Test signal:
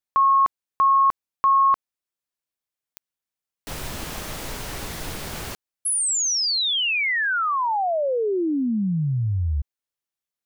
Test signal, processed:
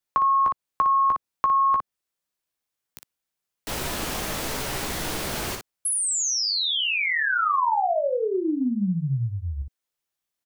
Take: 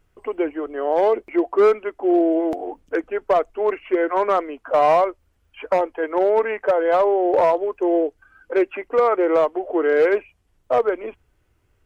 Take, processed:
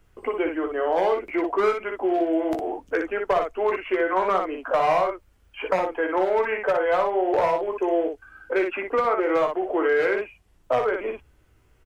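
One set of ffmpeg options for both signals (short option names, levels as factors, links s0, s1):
-filter_complex "[0:a]aecho=1:1:16|59:0.447|0.531,acrossover=split=180|960[s0][s1][s2];[s0]acompressor=threshold=0.00891:ratio=2[s3];[s1]acompressor=threshold=0.0355:ratio=3[s4];[s2]acompressor=threshold=0.0282:ratio=2[s5];[s3][s4][s5]amix=inputs=3:normalize=0,volume=1.41"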